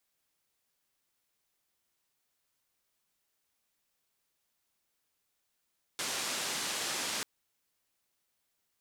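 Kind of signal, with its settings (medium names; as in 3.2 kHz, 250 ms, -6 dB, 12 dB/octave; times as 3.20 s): noise band 180–7700 Hz, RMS -35.5 dBFS 1.24 s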